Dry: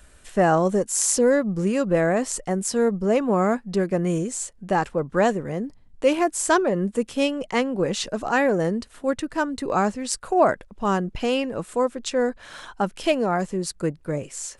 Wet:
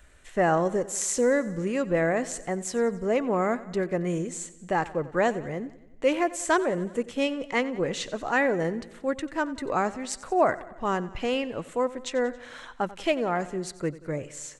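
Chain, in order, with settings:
thirty-one-band graphic EQ 200 Hz −5 dB, 2,000 Hz +6 dB, 5,000 Hz −5 dB, 10,000 Hz −10 dB
on a send: repeating echo 91 ms, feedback 60%, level −18 dB
on the sum: level −4 dB

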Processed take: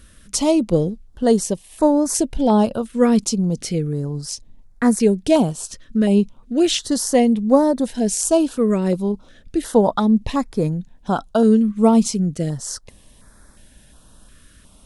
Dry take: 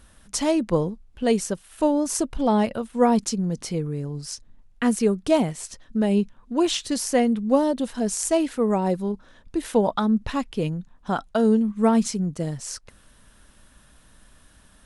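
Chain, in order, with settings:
notch on a step sequencer 2.8 Hz 830–2,900 Hz
level +5.5 dB

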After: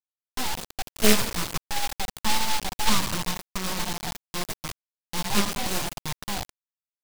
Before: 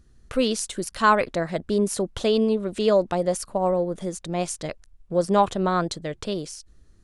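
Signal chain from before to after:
rectangular room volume 2,700 cubic metres, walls furnished, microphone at 1.5 metres
rotating-speaker cabinet horn 0.65 Hz, later 8 Hz, at 0:04.02
Butterworth high-pass 280 Hz 72 dB per octave
gate on every frequency bin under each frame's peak −20 dB strong
full-wave rectification
Gaussian smoothing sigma 1.6 samples
bit reduction 5 bits
short delay modulated by noise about 3,100 Hz, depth 0.17 ms

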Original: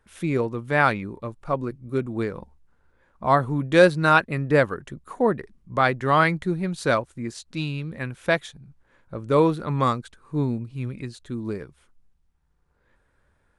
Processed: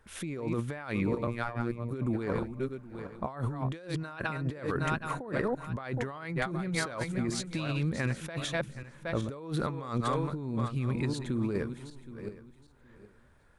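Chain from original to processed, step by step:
feedback delay that plays each chunk backwards 384 ms, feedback 43%, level −12 dB
compressor whose output falls as the input rises −31 dBFS, ratio −1
0:01.27–0:01.91: phases set to zero 118 Hz
level −3 dB

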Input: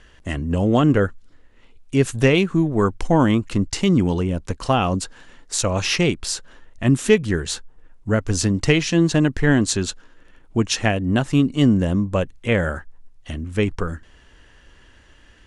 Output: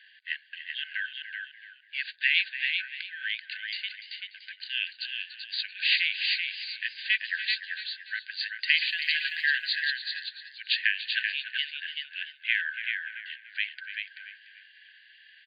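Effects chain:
brick-wall band-pass 1,500–4,800 Hz
0:03.45–0:04.34: fade out
0:08.85–0:09.52: bit-depth reduction 12 bits, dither triangular
single-tap delay 385 ms −5 dB
feedback echo with a swinging delay time 291 ms, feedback 35%, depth 55 cents, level −12 dB

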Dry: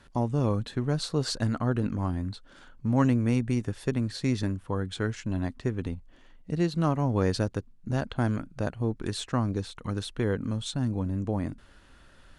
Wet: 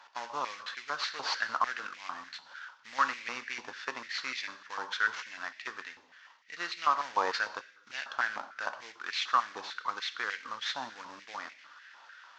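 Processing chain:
variable-slope delta modulation 32 kbit/s
reverb whose tail is shaped and stops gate 280 ms falling, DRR 9.5 dB
high-pass on a step sequencer 6.7 Hz 900–2,200 Hz

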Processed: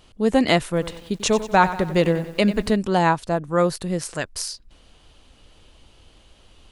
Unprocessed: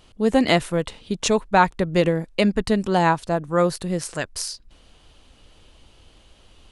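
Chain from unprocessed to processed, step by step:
0:00.67–0:02.76: feedback echo at a low word length 93 ms, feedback 55%, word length 7 bits, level −13 dB

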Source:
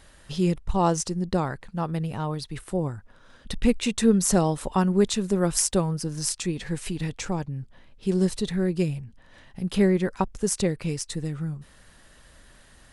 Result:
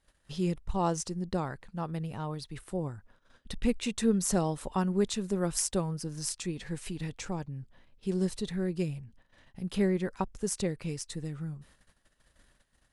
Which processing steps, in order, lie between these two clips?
noise gate −50 dBFS, range −16 dB
level −7 dB

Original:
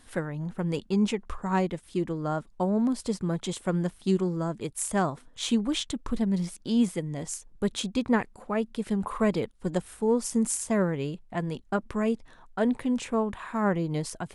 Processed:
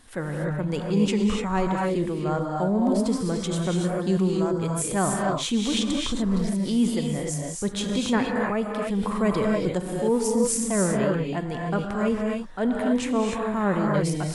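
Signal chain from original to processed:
reverb whose tail is shaped and stops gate 320 ms rising, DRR 0 dB
transient designer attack −4 dB, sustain +2 dB
level +2 dB

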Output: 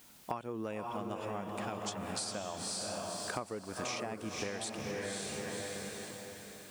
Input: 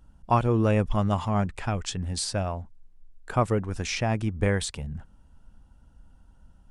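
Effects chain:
high-pass filter 230 Hz 12 dB per octave
high-shelf EQ 5,600 Hz +5.5 dB
bit-depth reduction 10 bits, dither triangular
on a send: feedback delay with all-pass diffusion 537 ms, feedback 43%, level −4 dB
on the sum: downward compressor 12 to 1, threshold −36 dBFS, peak gain reduction 20 dB
level +1 dB

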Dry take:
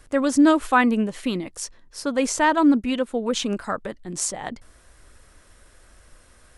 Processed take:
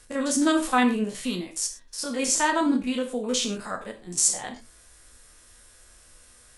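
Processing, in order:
spectrum averaged block by block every 50 ms
parametric band 9,000 Hz +11.5 dB 2.8 octaves
reverb whose tail is shaped and stops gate 140 ms falling, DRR 4 dB
level −5.5 dB

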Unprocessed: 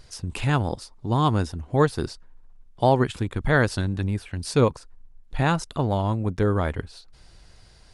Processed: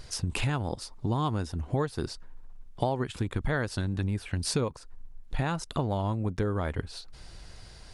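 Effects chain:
downward compressor 6 to 1, threshold −30 dBFS, peak gain reduction 15.5 dB
level +4 dB

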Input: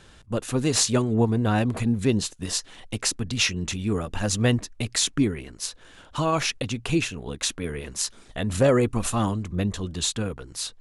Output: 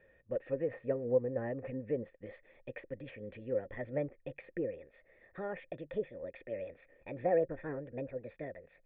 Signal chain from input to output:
gliding playback speed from 104% → 140%
treble cut that deepens with the level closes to 1,500 Hz, closed at −18.5 dBFS
formant resonators in series e

